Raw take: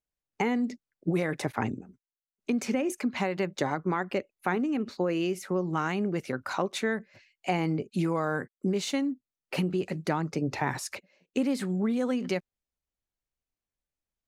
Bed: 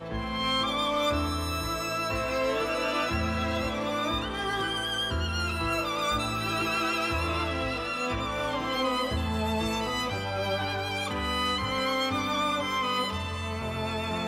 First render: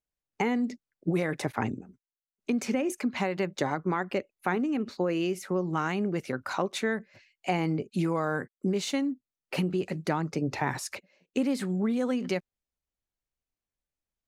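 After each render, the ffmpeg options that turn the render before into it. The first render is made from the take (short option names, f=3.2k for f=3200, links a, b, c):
-af anull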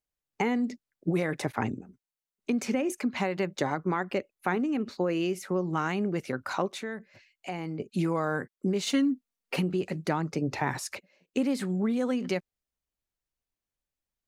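-filter_complex "[0:a]asettb=1/sr,asplit=3[a][b][c];[a]atrim=end=6.684[d];[b]atrim=start=6.68:end=7.8,asetpts=PTS-STARTPTS,afade=t=in:d=0.004:c=qsin,afade=t=out:st=1.116:d=0.004:c=qsin,acompressor=threshold=-44dB:ratio=1.5:attack=3.2:release=140:knee=1:detection=peak[e];[c]atrim=start=7.796[f];[d][e]acrossfade=d=0.004:c1=hsin:c2=qsin[g];[g][f]acrossfade=d=0.004:c1=qsin:c2=hsin,asettb=1/sr,asplit=3[h][i][j];[h]atrim=end=8.864[k];[i]atrim=start=8.86:end=9.56,asetpts=PTS-STARTPTS,afade=t=in:d=0.004:c=qsin,afade=t=out:st=0.696:d=0.004:c=qsin,aecho=1:1:4.3:0.97,atrim=end_sample=30870[l];[j]atrim=start=9.556[m];[k][l]acrossfade=d=0.004:c1=hsin:c2=qsin[n];[n][m]acrossfade=d=0.004:c1=qsin:c2=hsin"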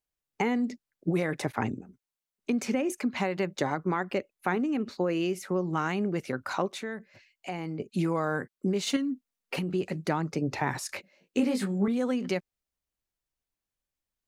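-filter_complex "[0:a]asettb=1/sr,asplit=3[a][b][c];[a]atrim=end=8.964[d];[b]atrim=start=8.96:end=9.69,asetpts=PTS-STARTPTS,afade=t=in:d=0.004:c=qsin,afade=t=out:st=0.726:d=0.004:c=qsin,acompressor=threshold=-27dB:ratio=6:attack=3.2:release=140:knee=1:detection=peak[e];[c]atrim=start=9.686[f];[d][e]acrossfade=d=0.004:c1=hsin:c2=qsin[g];[g][f]acrossfade=d=0.004:c1=qsin:c2=hsin,asettb=1/sr,asplit=3[h][i][j];[h]atrim=end=10.874[k];[i]atrim=start=10.87:end=11.88,asetpts=PTS-STARTPTS,afade=t=in:d=0.004:c=qsin,afade=t=out:st=1.006:d=0.004:c=qsin,asplit=2[l][m];[m]adelay=20,volume=-3dB[n];[l][n]amix=inputs=2:normalize=0,atrim=end_sample=44541[o];[j]atrim=start=11.876[p];[k][o]acrossfade=d=0.004:c1=hsin:c2=qsin[q];[q][p]acrossfade=d=0.004:c1=qsin:c2=hsin"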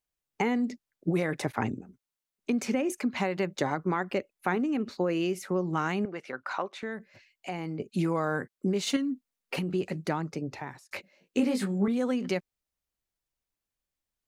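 -filter_complex "[0:a]asettb=1/sr,asplit=3[a][b][c];[a]atrim=end=6.054[d];[b]atrim=start=6.05:end=6.83,asetpts=PTS-STARTPTS,afade=t=in:d=0.004:c=qsin,afade=t=out:st=0.776:d=0.004:c=qsin,bandpass=f=1.4k:t=q:w=0.59[e];[c]atrim=start=6.826[f];[d][e]acrossfade=d=0.004:c1=hsin:c2=qsin[g];[g][f]acrossfade=d=0.004:c1=qsin:c2=hsin,asplit=2[h][i];[h]atrim=end=10.91,asetpts=PTS-STARTPTS,afade=t=out:st=9.63:d=1.28:c=qsin[j];[i]atrim=start=10.91,asetpts=PTS-STARTPTS,afade=t=in:d=0.004:c=hsin[k];[j][k]concat=n=2:v=0:a=1"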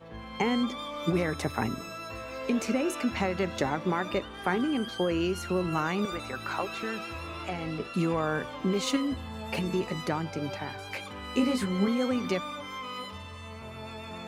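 -filter_complex "[1:a]volume=-10dB[a];[0:a][a]amix=inputs=2:normalize=0"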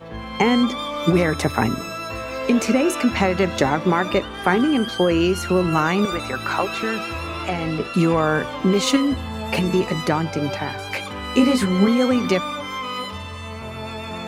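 -af "volume=10dB"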